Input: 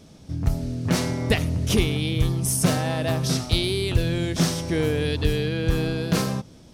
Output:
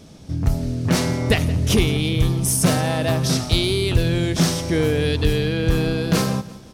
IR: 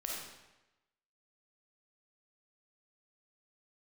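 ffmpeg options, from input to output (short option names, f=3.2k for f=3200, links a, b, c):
-filter_complex "[0:a]asplit=2[a][b];[b]asoftclip=type=tanh:threshold=-16.5dB,volume=-3.5dB[c];[a][c]amix=inputs=2:normalize=0,aecho=1:1:172|344|516:0.119|0.0499|0.021"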